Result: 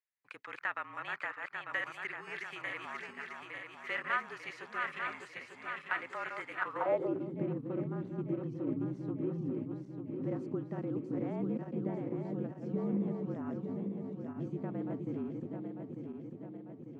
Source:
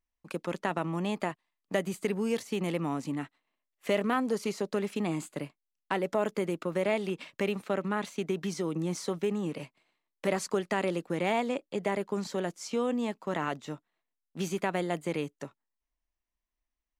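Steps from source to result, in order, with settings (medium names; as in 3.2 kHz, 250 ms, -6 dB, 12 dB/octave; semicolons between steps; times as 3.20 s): backward echo that repeats 448 ms, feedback 76%, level -4 dB; frequency shift -43 Hz; band-pass sweep 1.9 kHz -> 230 Hz, 6.56–7.28 s; dynamic bell 1.3 kHz, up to +7 dB, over -55 dBFS, Q 1.8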